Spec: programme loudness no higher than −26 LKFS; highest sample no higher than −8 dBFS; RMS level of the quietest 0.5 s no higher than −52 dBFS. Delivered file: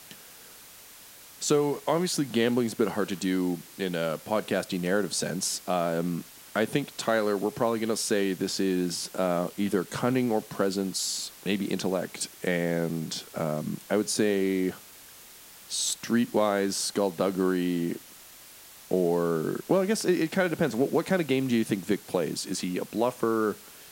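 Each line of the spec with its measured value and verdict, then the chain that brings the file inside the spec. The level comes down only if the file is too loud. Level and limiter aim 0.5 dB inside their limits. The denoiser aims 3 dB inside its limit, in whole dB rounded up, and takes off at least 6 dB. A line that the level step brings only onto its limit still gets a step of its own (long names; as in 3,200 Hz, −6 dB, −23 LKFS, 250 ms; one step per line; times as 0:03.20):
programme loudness −28.0 LKFS: in spec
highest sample −11.0 dBFS: in spec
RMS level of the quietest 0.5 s −49 dBFS: out of spec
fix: broadband denoise 6 dB, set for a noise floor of −49 dBFS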